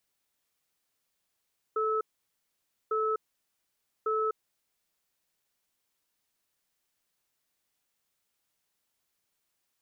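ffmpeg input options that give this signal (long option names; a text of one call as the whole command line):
ffmpeg -f lavfi -i "aevalsrc='0.0376*(sin(2*PI*437*t)+sin(2*PI*1300*t))*clip(min(mod(t,1.15),0.25-mod(t,1.15))/0.005,0,1)':duration=2.98:sample_rate=44100" out.wav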